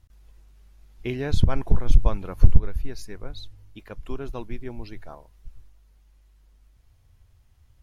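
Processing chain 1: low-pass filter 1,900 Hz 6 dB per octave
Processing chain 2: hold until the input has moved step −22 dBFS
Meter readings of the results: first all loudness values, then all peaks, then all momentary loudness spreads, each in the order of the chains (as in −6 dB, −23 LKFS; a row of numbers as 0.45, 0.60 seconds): −27.0, −25.5 LKFS; −1.0, −1.5 dBFS; 20, 19 LU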